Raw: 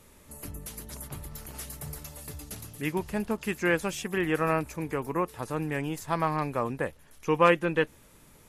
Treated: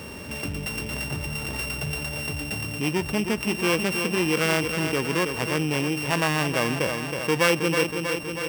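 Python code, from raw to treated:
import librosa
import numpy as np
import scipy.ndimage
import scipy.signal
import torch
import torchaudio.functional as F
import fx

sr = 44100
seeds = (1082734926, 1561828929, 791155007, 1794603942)

p1 = np.r_[np.sort(x[:len(x) // 16 * 16].reshape(-1, 16), axis=1).ravel(), x[len(x) // 16 * 16:]]
p2 = scipy.signal.sosfilt(scipy.signal.butter(2, 85.0, 'highpass', fs=sr, output='sos'), p1)
p3 = fx.high_shelf(p2, sr, hz=4000.0, db=-5.5)
p4 = p3 + fx.echo_feedback(p3, sr, ms=320, feedback_pct=48, wet_db=-11.0, dry=0)
y = fx.env_flatten(p4, sr, amount_pct=50)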